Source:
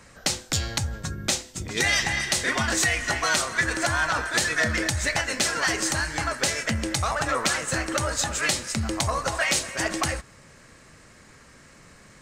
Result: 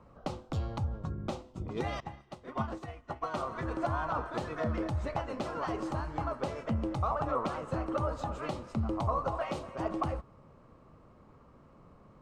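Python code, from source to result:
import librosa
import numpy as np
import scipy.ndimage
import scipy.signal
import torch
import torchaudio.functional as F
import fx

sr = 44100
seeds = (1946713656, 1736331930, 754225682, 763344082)

y = fx.curve_eq(x, sr, hz=(1200.0, 1700.0, 2900.0, 7100.0), db=(0, -20, -15, -29))
y = fx.upward_expand(y, sr, threshold_db=-38.0, expansion=2.5, at=(2.0, 3.34))
y = y * 10.0 ** (-4.0 / 20.0)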